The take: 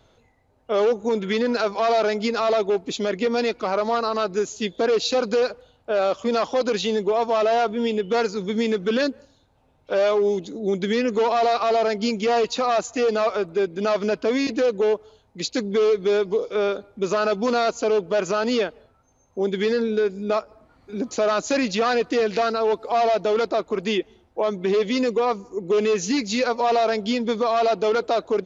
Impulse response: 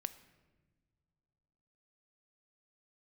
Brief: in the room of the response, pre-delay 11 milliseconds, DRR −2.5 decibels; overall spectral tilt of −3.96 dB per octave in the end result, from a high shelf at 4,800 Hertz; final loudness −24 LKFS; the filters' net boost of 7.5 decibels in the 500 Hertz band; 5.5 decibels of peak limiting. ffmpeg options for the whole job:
-filter_complex "[0:a]equalizer=frequency=500:width_type=o:gain=9,highshelf=frequency=4800:gain=9,alimiter=limit=-9.5dB:level=0:latency=1,asplit=2[link_01][link_02];[1:a]atrim=start_sample=2205,adelay=11[link_03];[link_02][link_03]afir=irnorm=-1:irlink=0,volume=4.5dB[link_04];[link_01][link_04]amix=inputs=2:normalize=0,volume=-10dB"

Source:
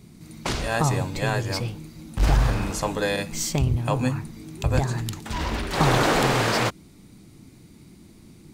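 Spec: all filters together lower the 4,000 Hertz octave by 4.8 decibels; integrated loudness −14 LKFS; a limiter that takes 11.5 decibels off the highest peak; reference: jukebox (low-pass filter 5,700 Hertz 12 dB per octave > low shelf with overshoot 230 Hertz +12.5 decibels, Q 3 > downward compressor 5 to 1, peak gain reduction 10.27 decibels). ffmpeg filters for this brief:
ffmpeg -i in.wav -af "equalizer=frequency=4000:width_type=o:gain=-5,alimiter=limit=-18dB:level=0:latency=1,lowpass=5700,lowshelf=frequency=230:width_type=q:width=3:gain=12.5,acompressor=threshold=-17dB:ratio=5,volume=8dB" out.wav

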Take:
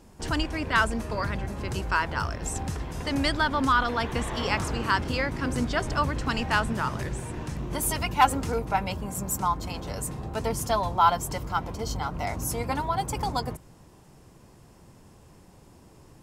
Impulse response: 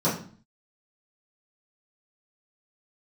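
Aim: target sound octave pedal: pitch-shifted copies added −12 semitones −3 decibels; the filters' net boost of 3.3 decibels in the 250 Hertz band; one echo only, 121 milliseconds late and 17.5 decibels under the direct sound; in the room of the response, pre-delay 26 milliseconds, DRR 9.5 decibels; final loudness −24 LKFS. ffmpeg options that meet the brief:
-filter_complex "[0:a]equalizer=frequency=250:width_type=o:gain=4,aecho=1:1:121:0.133,asplit=2[link_01][link_02];[1:a]atrim=start_sample=2205,adelay=26[link_03];[link_02][link_03]afir=irnorm=-1:irlink=0,volume=-23dB[link_04];[link_01][link_04]amix=inputs=2:normalize=0,asplit=2[link_05][link_06];[link_06]asetrate=22050,aresample=44100,atempo=2,volume=-3dB[link_07];[link_05][link_07]amix=inputs=2:normalize=0"

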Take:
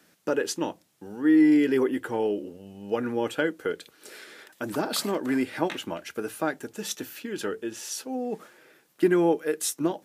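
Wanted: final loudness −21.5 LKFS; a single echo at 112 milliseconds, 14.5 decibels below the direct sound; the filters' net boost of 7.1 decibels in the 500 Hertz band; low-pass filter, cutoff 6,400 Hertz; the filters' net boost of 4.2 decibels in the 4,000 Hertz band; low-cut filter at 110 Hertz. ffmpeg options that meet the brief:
ffmpeg -i in.wav -af "highpass=110,lowpass=6400,equalizer=frequency=500:width_type=o:gain=9,equalizer=frequency=4000:width_type=o:gain=6,aecho=1:1:112:0.188,volume=0.5dB" out.wav

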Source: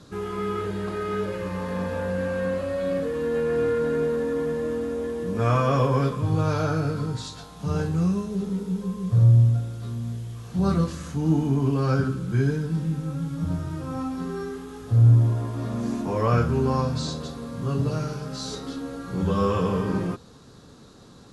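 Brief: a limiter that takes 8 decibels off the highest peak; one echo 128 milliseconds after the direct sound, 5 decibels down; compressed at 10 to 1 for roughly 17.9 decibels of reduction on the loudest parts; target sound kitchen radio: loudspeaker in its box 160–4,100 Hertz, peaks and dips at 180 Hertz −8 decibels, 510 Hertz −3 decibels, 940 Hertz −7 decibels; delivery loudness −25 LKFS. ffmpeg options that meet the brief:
ffmpeg -i in.wav -af "acompressor=threshold=-31dB:ratio=10,alimiter=level_in=6.5dB:limit=-24dB:level=0:latency=1,volume=-6.5dB,highpass=160,equalizer=frequency=180:width_type=q:width=4:gain=-8,equalizer=frequency=510:width_type=q:width=4:gain=-3,equalizer=frequency=940:width_type=q:width=4:gain=-7,lowpass=frequency=4100:width=0.5412,lowpass=frequency=4100:width=1.3066,aecho=1:1:128:0.562,volume=15.5dB" out.wav

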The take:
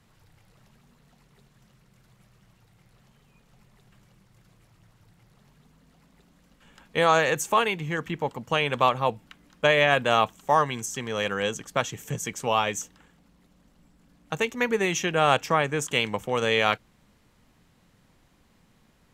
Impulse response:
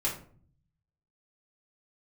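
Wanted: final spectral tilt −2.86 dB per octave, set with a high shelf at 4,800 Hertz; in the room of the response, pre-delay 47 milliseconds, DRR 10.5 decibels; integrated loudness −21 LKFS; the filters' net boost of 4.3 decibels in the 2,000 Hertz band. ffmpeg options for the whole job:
-filter_complex "[0:a]equalizer=frequency=2000:width_type=o:gain=4.5,highshelf=frequency=4800:gain=5,asplit=2[link_01][link_02];[1:a]atrim=start_sample=2205,adelay=47[link_03];[link_02][link_03]afir=irnorm=-1:irlink=0,volume=-17dB[link_04];[link_01][link_04]amix=inputs=2:normalize=0,volume=1dB"

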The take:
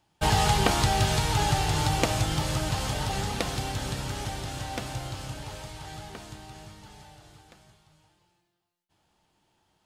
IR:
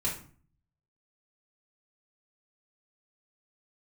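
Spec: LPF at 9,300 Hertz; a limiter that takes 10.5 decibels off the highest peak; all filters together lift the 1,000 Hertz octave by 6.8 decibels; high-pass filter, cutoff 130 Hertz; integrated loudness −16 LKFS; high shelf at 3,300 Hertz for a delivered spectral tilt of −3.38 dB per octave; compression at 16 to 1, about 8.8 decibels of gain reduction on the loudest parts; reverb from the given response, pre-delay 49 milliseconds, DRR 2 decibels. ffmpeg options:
-filter_complex "[0:a]highpass=130,lowpass=9300,equalizer=frequency=1000:width_type=o:gain=8.5,highshelf=frequency=3300:gain=6,acompressor=threshold=-23dB:ratio=16,alimiter=limit=-19.5dB:level=0:latency=1,asplit=2[link_01][link_02];[1:a]atrim=start_sample=2205,adelay=49[link_03];[link_02][link_03]afir=irnorm=-1:irlink=0,volume=-7.5dB[link_04];[link_01][link_04]amix=inputs=2:normalize=0,volume=12dB"

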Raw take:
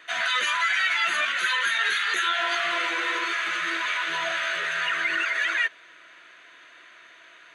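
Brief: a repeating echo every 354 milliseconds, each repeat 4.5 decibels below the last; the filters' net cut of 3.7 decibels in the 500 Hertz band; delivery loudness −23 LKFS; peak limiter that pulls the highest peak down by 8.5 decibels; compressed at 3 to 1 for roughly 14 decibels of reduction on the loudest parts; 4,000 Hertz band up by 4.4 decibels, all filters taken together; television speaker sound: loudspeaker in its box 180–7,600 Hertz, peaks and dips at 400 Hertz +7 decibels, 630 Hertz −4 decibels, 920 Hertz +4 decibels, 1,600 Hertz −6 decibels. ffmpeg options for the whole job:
ffmpeg -i in.wav -af "equalizer=frequency=500:width_type=o:gain=-5,equalizer=frequency=4000:width_type=o:gain=6,acompressor=threshold=-39dB:ratio=3,alimiter=level_in=9.5dB:limit=-24dB:level=0:latency=1,volume=-9.5dB,highpass=frequency=180:width=0.5412,highpass=frequency=180:width=1.3066,equalizer=frequency=400:width_type=q:width=4:gain=7,equalizer=frequency=630:width_type=q:width=4:gain=-4,equalizer=frequency=920:width_type=q:width=4:gain=4,equalizer=frequency=1600:width_type=q:width=4:gain=-6,lowpass=frequency=7600:width=0.5412,lowpass=frequency=7600:width=1.3066,aecho=1:1:354|708|1062|1416|1770|2124|2478|2832|3186:0.596|0.357|0.214|0.129|0.0772|0.0463|0.0278|0.0167|0.01,volume=17dB" out.wav

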